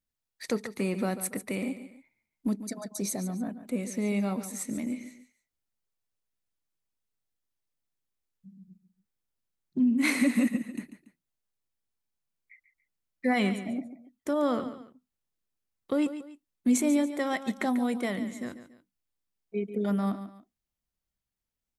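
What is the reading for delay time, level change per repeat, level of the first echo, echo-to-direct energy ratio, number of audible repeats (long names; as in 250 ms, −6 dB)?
142 ms, −9.0 dB, −12.0 dB, −11.5 dB, 2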